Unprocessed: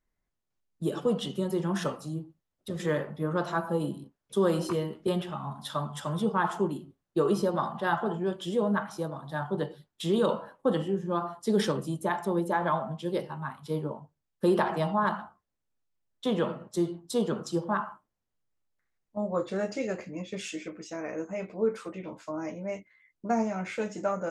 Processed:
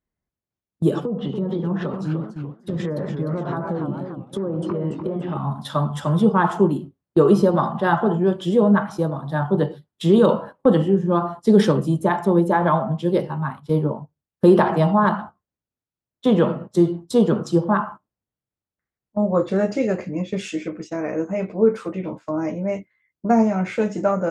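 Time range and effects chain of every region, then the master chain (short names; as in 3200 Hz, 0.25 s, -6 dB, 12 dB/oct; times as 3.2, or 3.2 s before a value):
1.04–5.37 treble ducked by the level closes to 840 Hz, closed at -23 dBFS + compressor 12:1, threshold -32 dBFS + warbling echo 0.294 s, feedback 45%, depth 214 cents, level -7 dB
whole clip: HPF 74 Hz; gate -44 dBFS, range -11 dB; tilt -2 dB/oct; gain +8 dB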